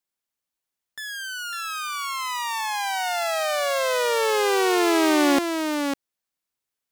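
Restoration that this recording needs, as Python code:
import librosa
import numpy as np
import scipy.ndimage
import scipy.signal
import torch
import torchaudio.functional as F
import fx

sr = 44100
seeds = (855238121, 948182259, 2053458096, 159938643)

y = fx.fix_echo_inverse(x, sr, delay_ms=551, level_db=-6.0)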